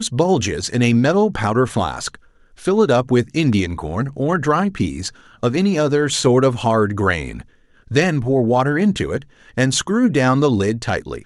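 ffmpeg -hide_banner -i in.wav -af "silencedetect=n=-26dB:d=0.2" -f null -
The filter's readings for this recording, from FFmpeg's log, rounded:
silence_start: 2.15
silence_end: 2.65 | silence_duration: 0.50
silence_start: 5.09
silence_end: 5.43 | silence_duration: 0.34
silence_start: 7.41
silence_end: 7.91 | silence_duration: 0.50
silence_start: 9.18
silence_end: 9.57 | silence_duration: 0.40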